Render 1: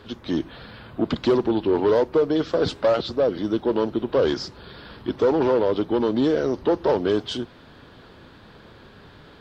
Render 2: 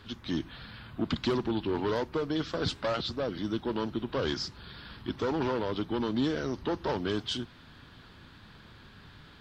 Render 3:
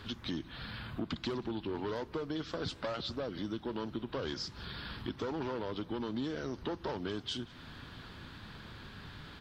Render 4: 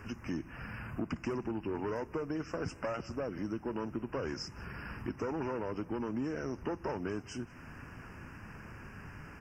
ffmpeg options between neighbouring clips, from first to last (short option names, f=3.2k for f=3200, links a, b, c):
-af "equalizer=f=500:t=o:w=1.6:g=-11.5,volume=-2dB"
-af "acompressor=threshold=-41dB:ratio=3,aecho=1:1:183:0.0668,volume=3.5dB"
-af "asuperstop=centerf=3800:order=12:qfactor=1.7,volume=1dB"